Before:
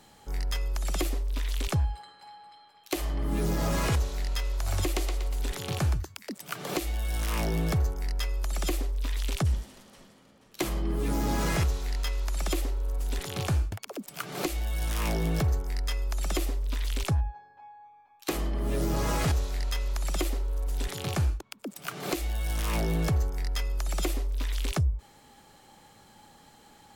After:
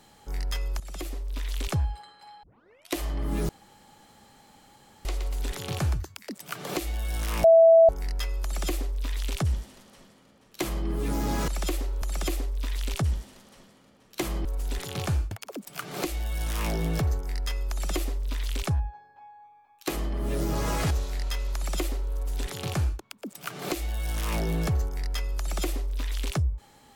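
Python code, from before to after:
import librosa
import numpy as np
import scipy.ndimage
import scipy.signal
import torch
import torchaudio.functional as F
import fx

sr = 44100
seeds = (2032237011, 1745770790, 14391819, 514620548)

y = fx.edit(x, sr, fx.fade_in_from(start_s=0.8, length_s=1.07, curve='qsin', floor_db=-13.5),
    fx.tape_start(start_s=2.43, length_s=0.53),
    fx.room_tone_fill(start_s=3.49, length_s=1.56),
    fx.bleep(start_s=7.44, length_s=0.45, hz=658.0, db=-11.5),
    fx.duplicate(start_s=8.43, length_s=2.43, to_s=12.86),
    fx.cut(start_s=11.48, length_s=0.84), tone=tone)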